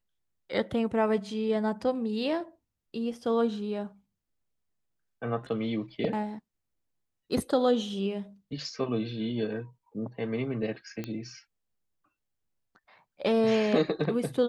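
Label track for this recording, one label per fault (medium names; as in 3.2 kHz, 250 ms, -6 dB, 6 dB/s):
11.040000	11.040000	pop -21 dBFS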